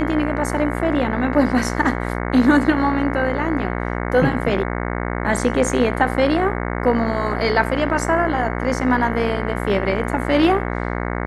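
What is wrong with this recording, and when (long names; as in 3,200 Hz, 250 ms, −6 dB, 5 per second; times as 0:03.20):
mains buzz 60 Hz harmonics 37 −24 dBFS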